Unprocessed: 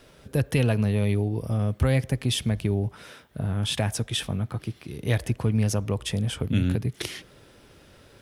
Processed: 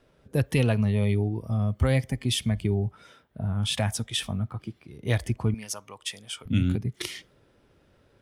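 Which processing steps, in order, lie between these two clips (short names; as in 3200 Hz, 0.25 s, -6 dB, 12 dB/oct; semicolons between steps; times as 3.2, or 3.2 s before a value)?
5.54–6.46 HPF 1100 Hz 6 dB/oct; spectral noise reduction 8 dB; mismatched tape noise reduction decoder only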